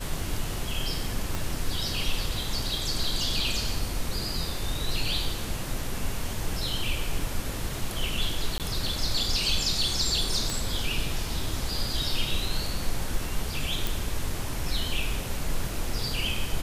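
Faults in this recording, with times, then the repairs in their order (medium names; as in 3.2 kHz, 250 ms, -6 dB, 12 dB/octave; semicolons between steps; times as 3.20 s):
1.35 s: pop
8.58–8.60 s: dropout 18 ms
10.50 s: pop
13.87 s: pop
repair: de-click; interpolate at 8.58 s, 18 ms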